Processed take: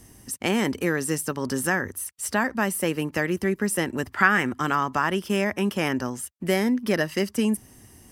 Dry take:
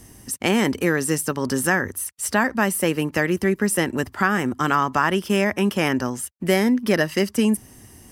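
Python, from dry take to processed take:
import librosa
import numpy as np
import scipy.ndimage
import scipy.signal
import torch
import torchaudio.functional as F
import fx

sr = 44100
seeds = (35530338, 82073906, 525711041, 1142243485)

y = fx.peak_eq(x, sr, hz=2000.0, db=9.0, octaves=1.6, at=(4.11, 4.6))
y = y * librosa.db_to_amplitude(-4.0)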